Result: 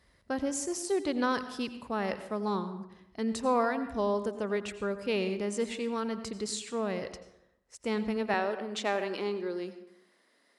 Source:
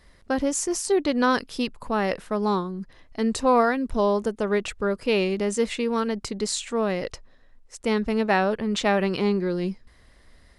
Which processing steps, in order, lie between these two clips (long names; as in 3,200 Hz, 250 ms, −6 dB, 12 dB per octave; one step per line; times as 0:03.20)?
high-pass filter 48 Hz 24 dB per octave, from 0:08.34 260 Hz
dense smooth reverb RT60 0.81 s, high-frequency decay 0.6×, pre-delay 75 ms, DRR 11 dB
level −8 dB